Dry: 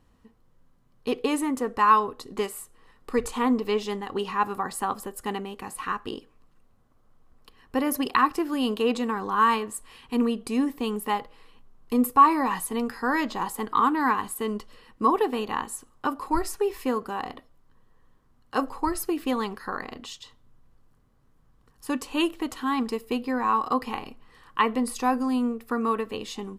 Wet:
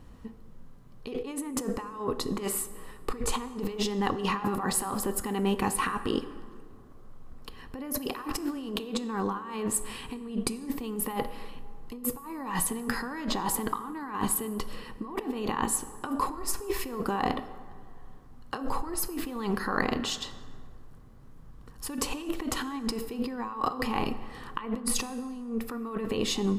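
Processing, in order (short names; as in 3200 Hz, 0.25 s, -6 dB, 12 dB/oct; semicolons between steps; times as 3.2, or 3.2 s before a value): low shelf 410 Hz +5.5 dB; negative-ratio compressor -33 dBFS, ratio -1; plate-style reverb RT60 2.1 s, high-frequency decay 0.5×, DRR 12.5 dB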